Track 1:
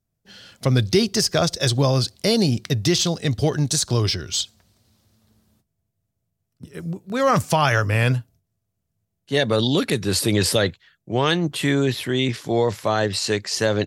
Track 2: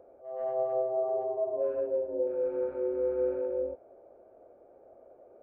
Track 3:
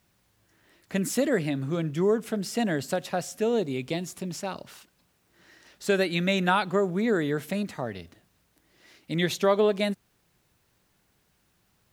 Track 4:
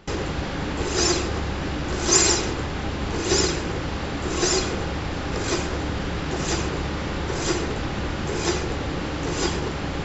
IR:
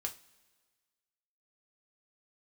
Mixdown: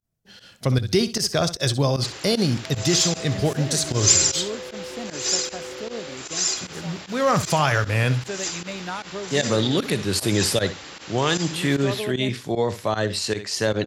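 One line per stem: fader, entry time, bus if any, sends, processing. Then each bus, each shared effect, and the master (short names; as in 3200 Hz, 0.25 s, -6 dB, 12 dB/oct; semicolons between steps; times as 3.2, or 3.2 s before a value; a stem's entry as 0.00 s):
-2.0 dB, 0.00 s, no send, echo send -13.5 dB, dry
0.0 dB, 2.40 s, no send, no echo send, limiter -31.5 dBFS, peak gain reduction 11.5 dB
-8.5 dB, 2.40 s, no send, no echo send, dry
-10.0 dB, 1.95 s, no send, no echo send, tilt +4.5 dB/oct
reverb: off
echo: feedback echo 64 ms, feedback 16%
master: pump 153 bpm, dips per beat 1, -18 dB, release 62 ms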